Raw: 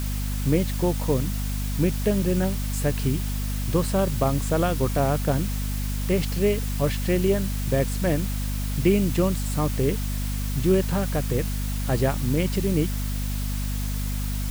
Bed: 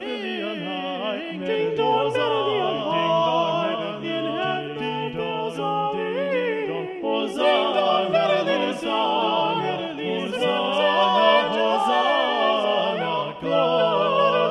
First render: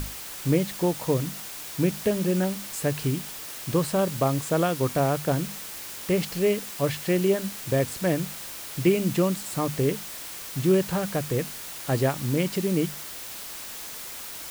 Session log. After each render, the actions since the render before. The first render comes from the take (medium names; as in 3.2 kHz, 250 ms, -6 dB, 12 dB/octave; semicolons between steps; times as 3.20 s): hum notches 50/100/150/200/250 Hz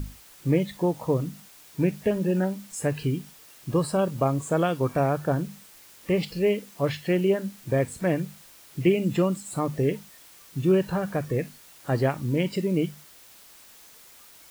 noise print and reduce 13 dB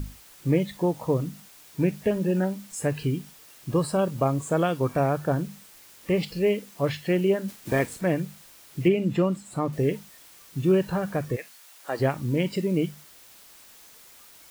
7.48–7.99 s: spectral peaks clipped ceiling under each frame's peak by 13 dB; 8.88–9.73 s: treble shelf 5.4 kHz -10.5 dB; 11.35–11.99 s: high-pass 970 Hz -> 430 Hz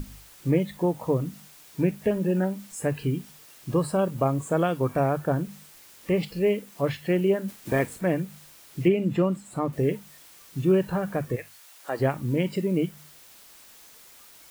hum notches 50/100/150 Hz; dynamic bell 5 kHz, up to -5 dB, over -50 dBFS, Q 0.88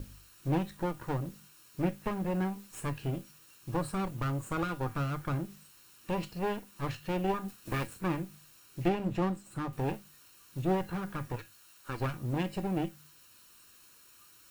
comb filter that takes the minimum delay 0.72 ms; feedback comb 110 Hz, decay 0.2 s, harmonics odd, mix 60%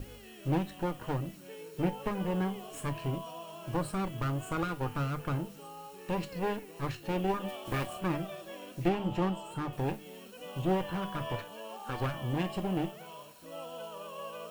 add bed -23.5 dB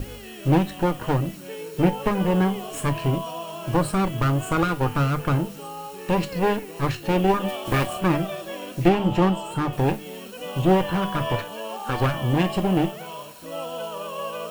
trim +11 dB